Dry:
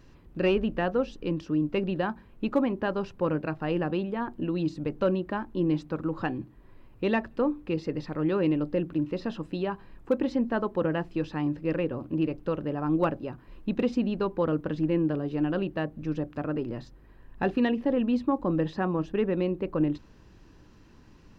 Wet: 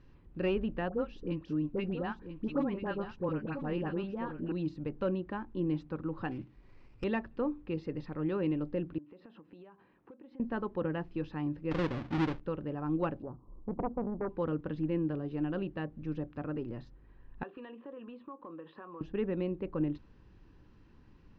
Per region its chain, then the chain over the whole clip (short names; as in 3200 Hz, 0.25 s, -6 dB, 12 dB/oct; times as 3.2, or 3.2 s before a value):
0.89–4.52 dispersion highs, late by 55 ms, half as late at 1100 Hz + echo 0.989 s -10 dB
6.31–7.04 band shelf 3000 Hz +15 dB 1.3 oct + running maximum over 9 samples
8.98–10.4 HPF 240 Hz + compressor 10:1, threshold -42 dBFS + air absorption 200 m
11.71–12.4 half-waves squared off + air absorption 110 m
13.22–14.29 steep low-pass 1200 Hz 96 dB/oct + Doppler distortion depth 0.92 ms
17.43–19.01 speaker cabinet 430–3200 Hz, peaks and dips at 780 Hz -7 dB, 1100 Hz +7 dB, 2100 Hz -8 dB + compressor 4:1, threshold -37 dBFS + doubler 18 ms -13 dB
whole clip: LPF 3800 Hz 12 dB/oct; low shelf 160 Hz +4.5 dB; notch 640 Hz, Q 12; gain -7.5 dB